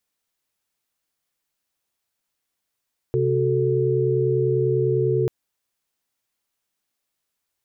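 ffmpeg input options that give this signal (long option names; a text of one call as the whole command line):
ffmpeg -f lavfi -i "aevalsrc='0.0794*(sin(2*PI*130.81*t)+sin(2*PI*369.99*t)+sin(2*PI*440*t))':duration=2.14:sample_rate=44100" out.wav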